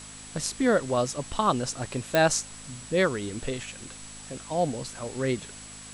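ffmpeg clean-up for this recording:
ffmpeg -i in.wav -af "adeclick=threshold=4,bandreject=frequency=52.3:width_type=h:width=4,bandreject=frequency=104.6:width_type=h:width=4,bandreject=frequency=156.9:width_type=h:width=4,bandreject=frequency=209.2:width_type=h:width=4,bandreject=frequency=261.5:width_type=h:width=4,bandreject=frequency=7800:width=30,afftdn=noise_reduction=27:noise_floor=-44" out.wav

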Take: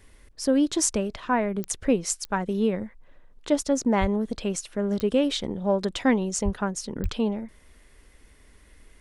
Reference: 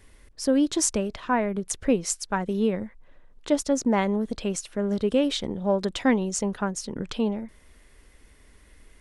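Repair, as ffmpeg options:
ffmpeg -i in.wav -filter_complex "[0:a]adeclick=threshold=4,asplit=3[link_01][link_02][link_03];[link_01]afade=type=out:start_time=4:duration=0.02[link_04];[link_02]highpass=frequency=140:width=0.5412,highpass=frequency=140:width=1.3066,afade=type=in:start_time=4:duration=0.02,afade=type=out:start_time=4.12:duration=0.02[link_05];[link_03]afade=type=in:start_time=4.12:duration=0.02[link_06];[link_04][link_05][link_06]amix=inputs=3:normalize=0,asplit=3[link_07][link_08][link_09];[link_07]afade=type=out:start_time=6.44:duration=0.02[link_10];[link_08]highpass=frequency=140:width=0.5412,highpass=frequency=140:width=1.3066,afade=type=in:start_time=6.44:duration=0.02,afade=type=out:start_time=6.56:duration=0.02[link_11];[link_09]afade=type=in:start_time=6.56:duration=0.02[link_12];[link_10][link_11][link_12]amix=inputs=3:normalize=0,asplit=3[link_13][link_14][link_15];[link_13]afade=type=out:start_time=7.02:duration=0.02[link_16];[link_14]highpass=frequency=140:width=0.5412,highpass=frequency=140:width=1.3066,afade=type=in:start_time=7.02:duration=0.02,afade=type=out:start_time=7.14:duration=0.02[link_17];[link_15]afade=type=in:start_time=7.14:duration=0.02[link_18];[link_16][link_17][link_18]amix=inputs=3:normalize=0" out.wav

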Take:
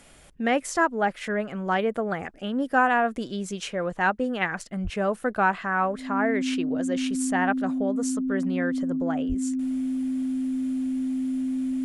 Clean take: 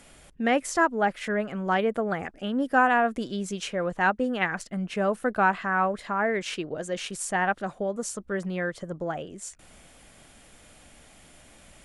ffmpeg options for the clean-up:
ffmpeg -i in.wav -filter_complex "[0:a]bandreject=frequency=260:width=30,asplit=3[link_01][link_02][link_03];[link_01]afade=type=out:start_time=4.83:duration=0.02[link_04];[link_02]highpass=frequency=140:width=0.5412,highpass=frequency=140:width=1.3066,afade=type=in:start_time=4.83:duration=0.02,afade=type=out:start_time=4.95:duration=0.02[link_05];[link_03]afade=type=in:start_time=4.95:duration=0.02[link_06];[link_04][link_05][link_06]amix=inputs=3:normalize=0,asplit=3[link_07][link_08][link_09];[link_07]afade=type=out:start_time=9.28:duration=0.02[link_10];[link_08]highpass=frequency=140:width=0.5412,highpass=frequency=140:width=1.3066,afade=type=in:start_time=9.28:duration=0.02,afade=type=out:start_time=9.4:duration=0.02[link_11];[link_09]afade=type=in:start_time=9.4:duration=0.02[link_12];[link_10][link_11][link_12]amix=inputs=3:normalize=0" out.wav

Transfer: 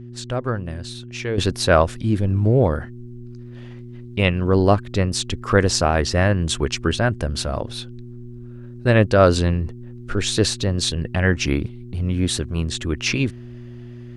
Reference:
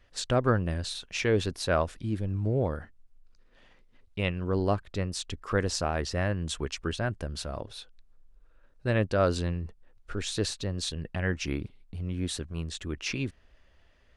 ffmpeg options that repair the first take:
ffmpeg -i in.wav -af "bandreject=frequency=120.6:width_type=h:width=4,bandreject=frequency=241.2:width_type=h:width=4,bandreject=frequency=361.8:width_type=h:width=4,asetnsamples=nb_out_samples=441:pad=0,asendcmd='1.38 volume volume -11dB',volume=0dB" out.wav

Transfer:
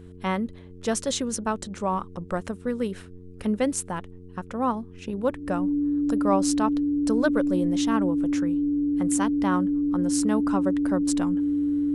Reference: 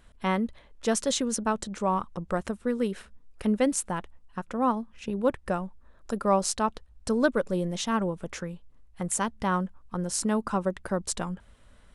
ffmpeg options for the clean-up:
ffmpeg -i in.wav -af "bandreject=frequency=90:width_type=h:width=4,bandreject=frequency=180:width_type=h:width=4,bandreject=frequency=270:width_type=h:width=4,bandreject=frequency=360:width_type=h:width=4,bandreject=frequency=450:width_type=h:width=4,bandreject=frequency=290:width=30" out.wav

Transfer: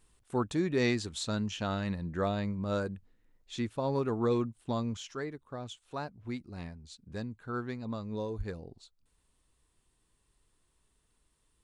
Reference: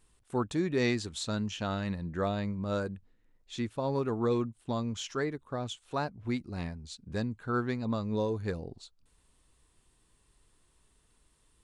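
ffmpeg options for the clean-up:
ffmpeg -i in.wav -filter_complex "[0:a]asplit=3[link_01][link_02][link_03];[link_01]afade=type=out:start_time=8.37:duration=0.02[link_04];[link_02]highpass=frequency=140:width=0.5412,highpass=frequency=140:width=1.3066,afade=type=in:start_time=8.37:duration=0.02,afade=type=out:start_time=8.49:duration=0.02[link_05];[link_03]afade=type=in:start_time=8.49:duration=0.02[link_06];[link_04][link_05][link_06]amix=inputs=3:normalize=0,asetnsamples=nb_out_samples=441:pad=0,asendcmd='4.97 volume volume 5.5dB',volume=0dB" out.wav

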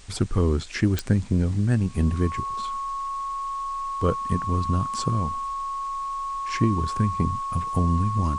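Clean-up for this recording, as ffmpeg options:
ffmpeg -i in.wav -af "adeclick=threshold=4,bandreject=frequency=1100:width=30,afwtdn=0.0035" out.wav

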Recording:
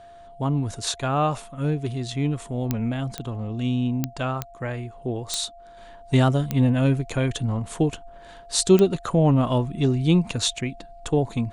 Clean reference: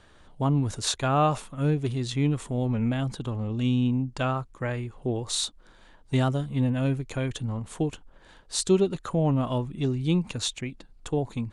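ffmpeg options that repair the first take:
ffmpeg -i in.wav -af "adeclick=threshold=4,bandreject=frequency=690:width=30,asetnsamples=nb_out_samples=441:pad=0,asendcmd='5.77 volume volume -5.5dB',volume=0dB" out.wav

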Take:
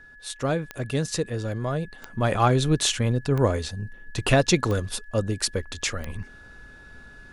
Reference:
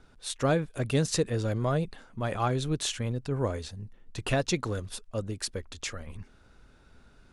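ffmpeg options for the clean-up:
ffmpeg -i in.wav -af "adeclick=threshold=4,bandreject=frequency=1700:width=30,asetnsamples=nb_out_samples=441:pad=0,asendcmd='2.02 volume volume -8dB',volume=0dB" out.wav

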